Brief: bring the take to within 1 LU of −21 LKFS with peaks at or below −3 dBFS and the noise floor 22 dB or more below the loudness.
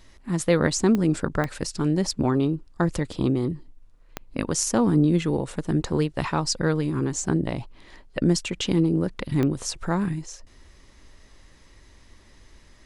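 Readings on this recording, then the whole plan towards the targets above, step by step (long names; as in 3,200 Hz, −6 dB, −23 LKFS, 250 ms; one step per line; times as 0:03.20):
number of clicks 4; integrated loudness −24.5 LKFS; sample peak −5.5 dBFS; target loudness −21.0 LKFS
→ click removal
level +3.5 dB
brickwall limiter −3 dBFS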